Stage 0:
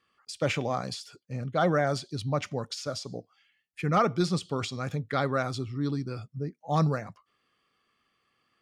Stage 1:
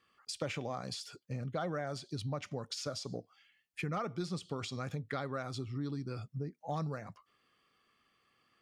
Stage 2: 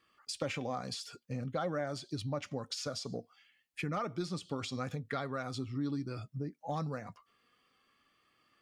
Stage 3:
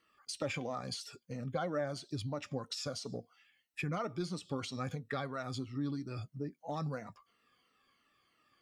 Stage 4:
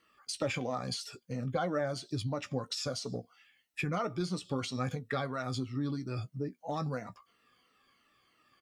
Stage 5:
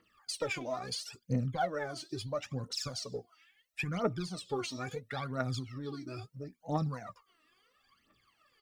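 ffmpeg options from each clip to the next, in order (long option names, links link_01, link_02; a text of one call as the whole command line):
ffmpeg -i in.wav -af "acompressor=threshold=-36dB:ratio=4" out.wav
ffmpeg -i in.wav -af "flanger=delay=3.1:depth=1.3:regen=66:speed=0.48:shape=triangular,volume=5.5dB" out.wav
ffmpeg -i in.wav -af "afftfilt=real='re*pow(10,9/40*sin(2*PI*(1.9*log(max(b,1)*sr/1024/100)/log(2)-(-3)*(pts-256)/sr)))':imag='im*pow(10,9/40*sin(2*PI*(1.9*log(max(b,1)*sr/1024/100)/log(2)-(-3)*(pts-256)/sr)))':win_size=1024:overlap=0.75,volume=-2dB" out.wav
ffmpeg -i in.wav -filter_complex "[0:a]asplit=2[link_01][link_02];[link_02]adelay=16,volume=-11.5dB[link_03];[link_01][link_03]amix=inputs=2:normalize=0,volume=3.5dB" out.wav
ffmpeg -i in.wav -af "aphaser=in_gain=1:out_gain=1:delay=3.3:decay=0.77:speed=0.74:type=triangular,volume=-4.5dB" out.wav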